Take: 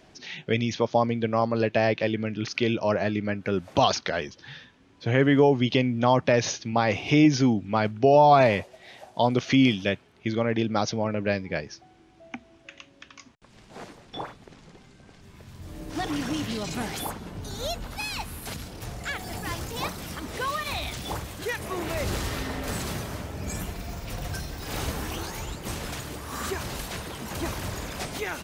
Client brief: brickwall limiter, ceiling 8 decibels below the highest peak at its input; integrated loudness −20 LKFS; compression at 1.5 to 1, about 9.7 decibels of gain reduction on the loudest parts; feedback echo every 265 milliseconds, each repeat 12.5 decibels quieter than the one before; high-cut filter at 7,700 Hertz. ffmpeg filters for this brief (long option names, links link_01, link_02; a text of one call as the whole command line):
ffmpeg -i in.wav -af "lowpass=7700,acompressor=threshold=-41dB:ratio=1.5,alimiter=limit=-22.5dB:level=0:latency=1,aecho=1:1:265|530|795:0.237|0.0569|0.0137,volume=16dB" out.wav